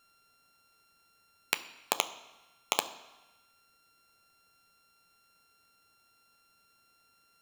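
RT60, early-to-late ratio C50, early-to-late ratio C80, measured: 1.1 s, 14.5 dB, 16.0 dB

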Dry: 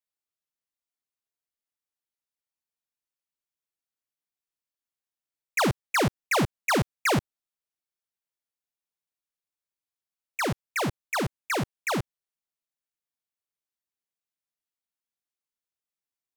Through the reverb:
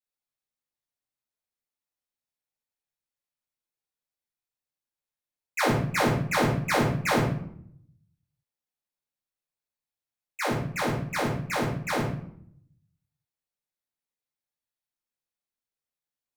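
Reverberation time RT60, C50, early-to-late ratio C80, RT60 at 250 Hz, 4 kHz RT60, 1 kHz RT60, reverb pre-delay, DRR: 0.65 s, 4.0 dB, 8.0 dB, 0.95 s, 0.45 s, 0.60 s, 3 ms, −7.0 dB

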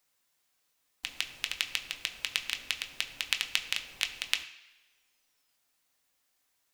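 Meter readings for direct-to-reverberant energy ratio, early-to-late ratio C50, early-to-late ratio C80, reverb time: 5.0 dB, 12.5 dB, 14.5 dB, non-exponential decay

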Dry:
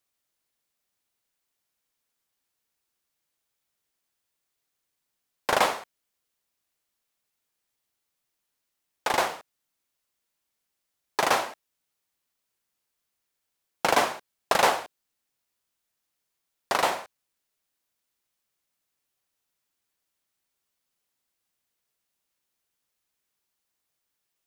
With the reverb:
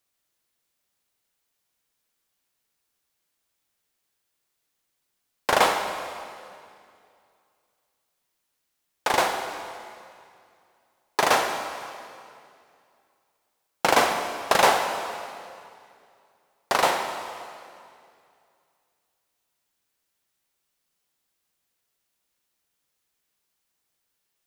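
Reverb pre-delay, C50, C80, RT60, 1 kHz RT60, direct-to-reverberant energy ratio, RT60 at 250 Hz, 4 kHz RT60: 23 ms, 6.0 dB, 7.0 dB, 2.4 s, 2.3 s, 5.5 dB, 2.5 s, 2.2 s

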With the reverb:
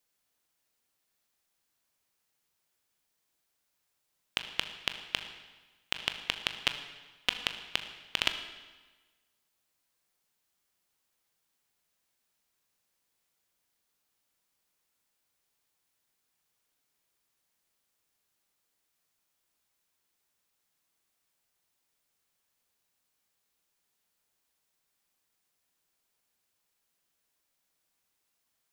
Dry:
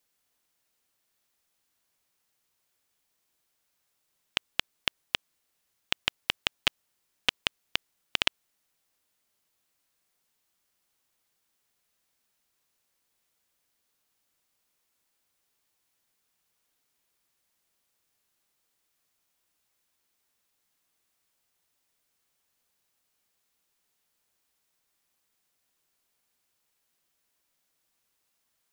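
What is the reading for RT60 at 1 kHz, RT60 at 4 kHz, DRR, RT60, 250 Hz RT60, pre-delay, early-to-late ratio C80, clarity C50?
1.3 s, 1.2 s, 7.0 dB, 1.3 s, 1.3 s, 18 ms, 11.0 dB, 9.5 dB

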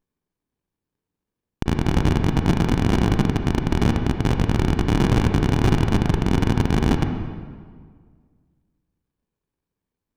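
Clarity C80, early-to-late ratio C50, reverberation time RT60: 7.0 dB, 5.5 dB, 1.8 s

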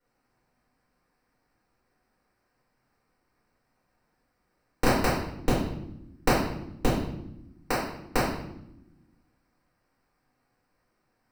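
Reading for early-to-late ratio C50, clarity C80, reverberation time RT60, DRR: 1.5 dB, 5.5 dB, 0.85 s, −10.5 dB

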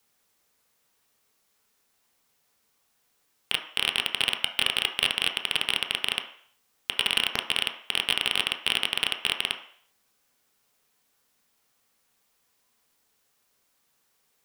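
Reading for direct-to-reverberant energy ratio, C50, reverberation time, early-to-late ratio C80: 3.0 dB, 9.0 dB, 0.55 s, 12.0 dB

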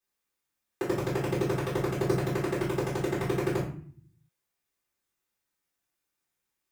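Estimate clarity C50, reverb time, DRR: 5.5 dB, 0.50 s, −9.5 dB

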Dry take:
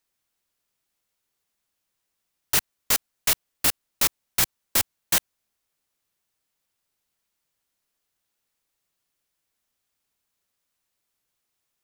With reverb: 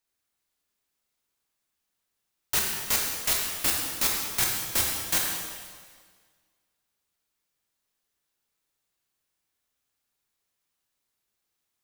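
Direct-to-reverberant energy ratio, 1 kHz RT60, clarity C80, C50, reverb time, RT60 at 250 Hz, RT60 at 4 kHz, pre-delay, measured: −1.5 dB, 1.7 s, 3.0 dB, 1.0 dB, 1.7 s, 1.7 s, 1.6 s, 8 ms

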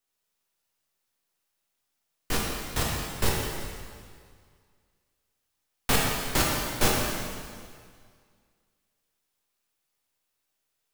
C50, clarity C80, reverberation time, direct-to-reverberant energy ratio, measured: −1.0 dB, 1.0 dB, 2.0 s, −3.5 dB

